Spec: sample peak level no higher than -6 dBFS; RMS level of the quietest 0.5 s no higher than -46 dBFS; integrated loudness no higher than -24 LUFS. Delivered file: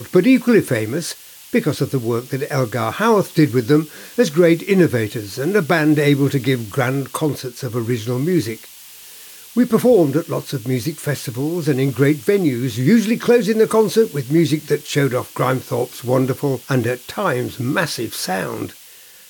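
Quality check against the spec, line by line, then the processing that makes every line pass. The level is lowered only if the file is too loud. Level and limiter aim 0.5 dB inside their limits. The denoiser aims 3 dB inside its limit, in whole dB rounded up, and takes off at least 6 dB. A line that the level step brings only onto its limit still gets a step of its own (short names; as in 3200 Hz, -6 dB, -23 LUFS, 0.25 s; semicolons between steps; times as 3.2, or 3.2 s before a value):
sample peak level -3.5 dBFS: fail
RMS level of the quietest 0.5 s -43 dBFS: fail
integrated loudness -18.0 LUFS: fail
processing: gain -6.5 dB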